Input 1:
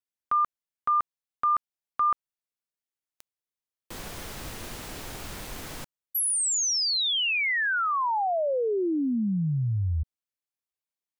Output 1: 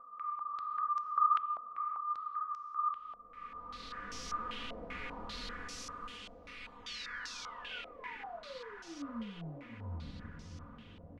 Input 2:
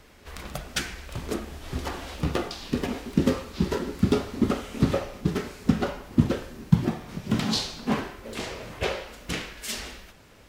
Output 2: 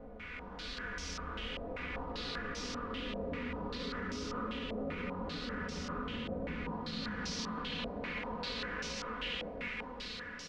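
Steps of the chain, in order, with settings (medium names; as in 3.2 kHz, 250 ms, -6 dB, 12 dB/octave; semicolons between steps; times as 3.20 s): spectral blur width 1080 ms; flange 1.3 Hz, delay 7.3 ms, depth 4.9 ms, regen -40%; dynamic bell 250 Hz, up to -6 dB, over -50 dBFS, Q 1.4; comb 4.1 ms, depth 96%; reverb removal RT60 0.57 s; peaking EQ 750 Hz -10 dB 0.25 oct; chorus 0.44 Hz, delay 18 ms, depth 7.1 ms; peak limiter -34.5 dBFS; on a send: echo that smears into a reverb 617 ms, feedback 74%, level -9.5 dB; on the sum: step-sequenced low-pass 5.1 Hz 660–5700 Hz; trim +1.5 dB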